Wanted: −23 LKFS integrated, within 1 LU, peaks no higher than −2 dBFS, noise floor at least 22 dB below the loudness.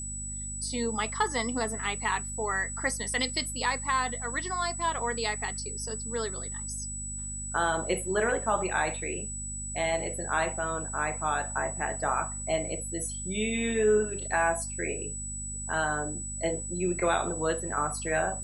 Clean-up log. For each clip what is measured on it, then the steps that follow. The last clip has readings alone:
mains hum 50 Hz; hum harmonics up to 250 Hz; level of the hum −38 dBFS; interfering tone 7,900 Hz; level of the tone −36 dBFS; integrated loudness −30.0 LKFS; sample peak −14.0 dBFS; target loudness −23.0 LKFS
→ hum removal 50 Hz, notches 5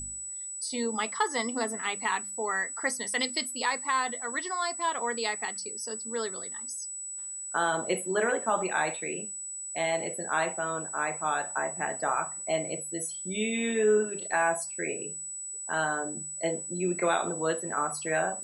mains hum none found; interfering tone 7,900 Hz; level of the tone −36 dBFS
→ notch filter 7,900 Hz, Q 30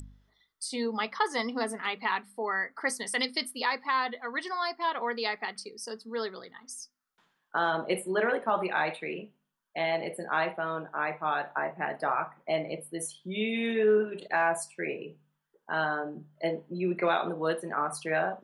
interfering tone none found; integrated loudness −31.0 LKFS; sample peak −15.0 dBFS; target loudness −23.0 LKFS
→ level +8 dB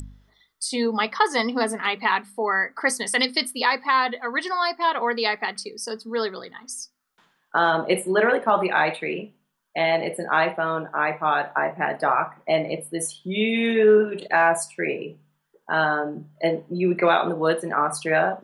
integrated loudness −23.0 LKFS; sample peak −7.0 dBFS; background noise floor −71 dBFS

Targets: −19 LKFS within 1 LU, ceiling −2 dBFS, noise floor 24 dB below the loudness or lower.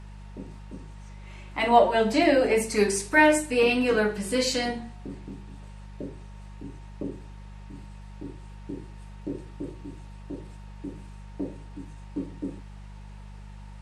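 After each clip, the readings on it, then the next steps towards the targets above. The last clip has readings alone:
mains hum 50 Hz; hum harmonics up to 200 Hz; level of the hum −40 dBFS; integrated loudness −24.5 LKFS; sample peak −5.5 dBFS; target loudness −19.0 LKFS
→ hum removal 50 Hz, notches 4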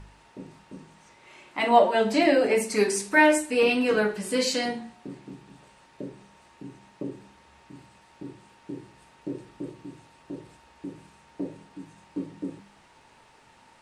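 mains hum none found; integrated loudness −23.5 LKFS; sample peak −5.5 dBFS; target loudness −19.0 LKFS
→ level +4.5 dB
brickwall limiter −2 dBFS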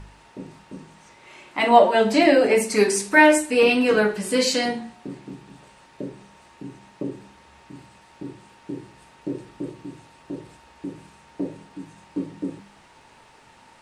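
integrated loudness −19.0 LKFS; sample peak −2.0 dBFS; background noise floor −52 dBFS

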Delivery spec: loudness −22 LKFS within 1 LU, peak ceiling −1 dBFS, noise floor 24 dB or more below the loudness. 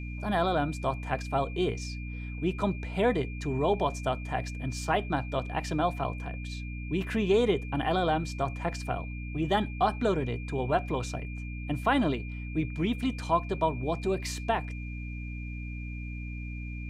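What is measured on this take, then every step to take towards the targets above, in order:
mains hum 60 Hz; hum harmonics up to 300 Hz; level of the hum −35 dBFS; interfering tone 2,400 Hz; level of the tone −45 dBFS; integrated loudness −30.5 LKFS; sample peak −12.0 dBFS; target loudness −22.0 LKFS
→ mains-hum notches 60/120/180/240/300 Hz
notch filter 2,400 Hz, Q 30
level +8.5 dB

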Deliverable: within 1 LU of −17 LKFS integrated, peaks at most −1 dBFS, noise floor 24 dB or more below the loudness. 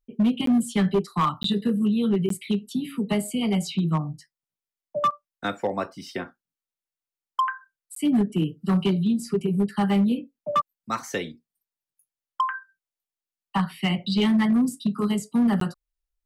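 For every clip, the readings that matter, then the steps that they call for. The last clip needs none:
share of clipped samples 1.4%; peaks flattened at −16.0 dBFS; number of dropouts 5; longest dropout 13 ms; integrated loudness −25.0 LKFS; sample peak −16.0 dBFS; target loudness −17.0 LKFS
→ clipped peaks rebuilt −16 dBFS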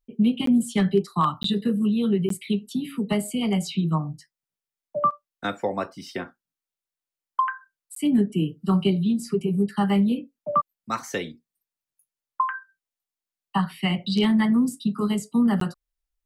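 share of clipped samples 0.0%; number of dropouts 5; longest dropout 13 ms
→ repair the gap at 0:00.46/0:01.43/0:02.29/0:07.95/0:15.60, 13 ms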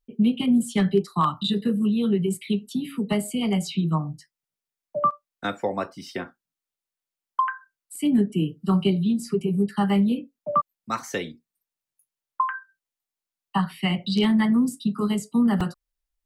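number of dropouts 0; integrated loudness −24.5 LKFS; sample peak −9.5 dBFS; target loudness −17.0 LKFS
→ level +7.5 dB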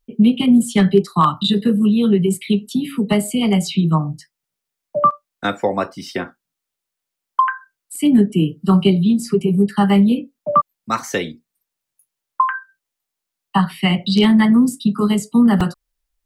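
integrated loudness −17.0 LKFS; sample peak −2.0 dBFS; background noise floor −82 dBFS

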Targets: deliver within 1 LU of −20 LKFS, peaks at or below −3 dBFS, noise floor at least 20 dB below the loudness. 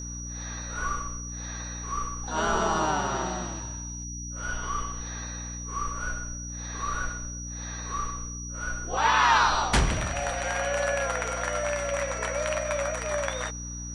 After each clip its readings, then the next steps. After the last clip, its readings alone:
mains hum 60 Hz; hum harmonics up to 300 Hz; level of the hum −36 dBFS; interfering tone 5,800 Hz; level of the tone −38 dBFS; integrated loudness −29.0 LKFS; sample peak −10.0 dBFS; target loudness −20.0 LKFS
→ mains-hum notches 60/120/180/240/300 Hz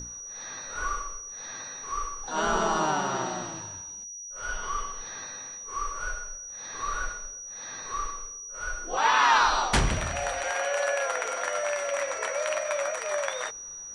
mains hum none found; interfering tone 5,800 Hz; level of the tone −38 dBFS
→ notch filter 5,800 Hz, Q 30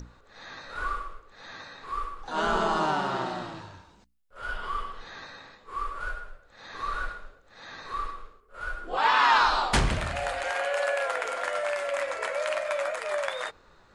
interfering tone none found; integrated loudness −28.5 LKFS; sample peak −10.5 dBFS; target loudness −20.0 LKFS
→ level +8.5 dB
brickwall limiter −3 dBFS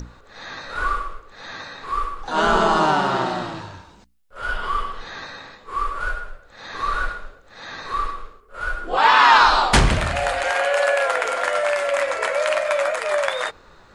integrated loudness −20.5 LKFS; sample peak −3.0 dBFS; background noise floor −50 dBFS

